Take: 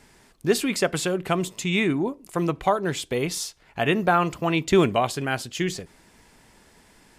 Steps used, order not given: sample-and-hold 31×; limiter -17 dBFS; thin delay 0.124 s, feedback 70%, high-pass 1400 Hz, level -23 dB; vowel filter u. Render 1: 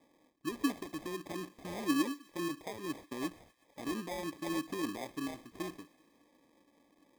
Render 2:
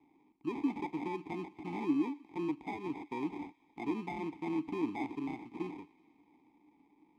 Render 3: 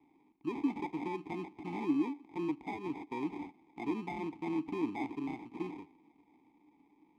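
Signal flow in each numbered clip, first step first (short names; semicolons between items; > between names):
limiter > vowel filter > sample-and-hold > thin delay; sample-and-hold > thin delay > limiter > vowel filter; thin delay > sample-and-hold > limiter > vowel filter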